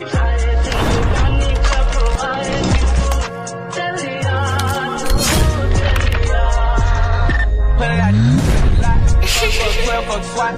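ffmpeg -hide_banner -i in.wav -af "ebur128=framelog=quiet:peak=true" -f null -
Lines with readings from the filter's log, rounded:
Integrated loudness:
  I:         -16.5 LUFS
  Threshold: -26.5 LUFS
Loudness range:
  LRA:         3.0 LU
  Threshold: -36.6 LUFS
  LRA low:   -18.2 LUFS
  LRA high:  -15.2 LUFS
True peak:
  Peak:       -4.4 dBFS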